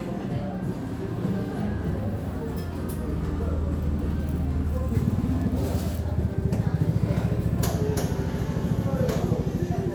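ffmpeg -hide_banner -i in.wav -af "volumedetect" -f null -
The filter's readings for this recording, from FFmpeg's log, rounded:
mean_volume: -25.9 dB
max_volume: -10.7 dB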